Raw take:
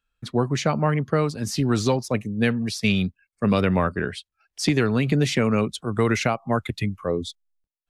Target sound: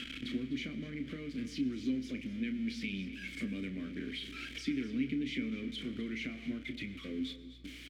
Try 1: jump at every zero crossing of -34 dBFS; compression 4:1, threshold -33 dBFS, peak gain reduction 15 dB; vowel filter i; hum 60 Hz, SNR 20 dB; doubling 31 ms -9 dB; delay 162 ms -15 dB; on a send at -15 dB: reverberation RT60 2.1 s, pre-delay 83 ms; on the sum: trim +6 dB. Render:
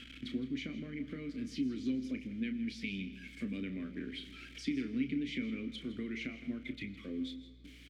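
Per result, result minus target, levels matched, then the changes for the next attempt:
echo 91 ms early; jump at every zero crossing: distortion -9 dB
change: delay 253 ms -15 dB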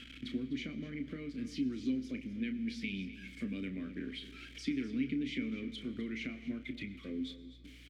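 jump at every zero crossing: distortion -9 dB
change: jump at every zero crossing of -24 dBFS

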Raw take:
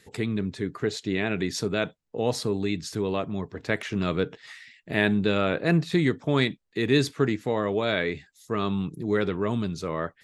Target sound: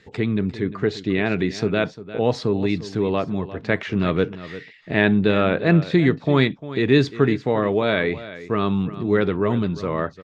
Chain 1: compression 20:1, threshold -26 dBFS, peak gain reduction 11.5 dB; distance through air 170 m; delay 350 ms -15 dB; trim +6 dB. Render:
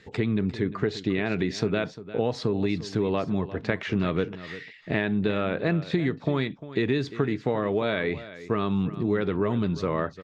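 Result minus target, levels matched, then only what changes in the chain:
compression: peak gain reduction +11.5 dB
remove: compression 20:1, threshold -26 dBFS, peak gain reduction 11.5 dB

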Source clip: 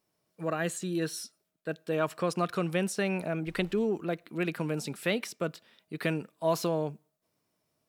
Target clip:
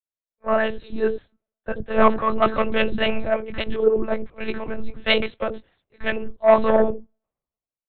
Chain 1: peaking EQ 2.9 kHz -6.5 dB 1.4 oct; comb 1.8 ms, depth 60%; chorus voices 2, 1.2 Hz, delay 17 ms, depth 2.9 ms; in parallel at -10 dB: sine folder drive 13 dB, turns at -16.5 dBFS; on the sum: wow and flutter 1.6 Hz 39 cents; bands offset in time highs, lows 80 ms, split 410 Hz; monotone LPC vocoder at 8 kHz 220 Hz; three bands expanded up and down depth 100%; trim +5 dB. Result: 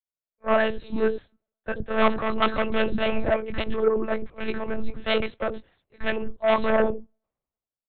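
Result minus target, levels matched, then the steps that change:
sine folder: distortion +11 dB
change: sine folder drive 13 dB, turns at -10.5 dBFS

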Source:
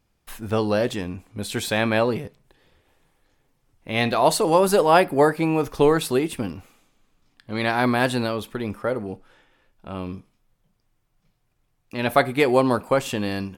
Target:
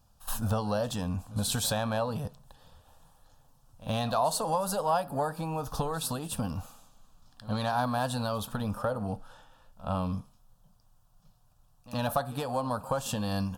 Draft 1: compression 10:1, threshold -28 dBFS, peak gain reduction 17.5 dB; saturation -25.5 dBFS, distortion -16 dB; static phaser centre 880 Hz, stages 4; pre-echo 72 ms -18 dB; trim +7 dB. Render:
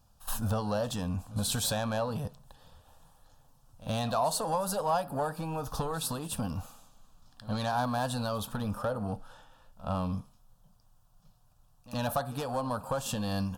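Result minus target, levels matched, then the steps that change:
saturation: distortion +9 dB
change: saturation -19.5 dBFS, distortion -25 dB

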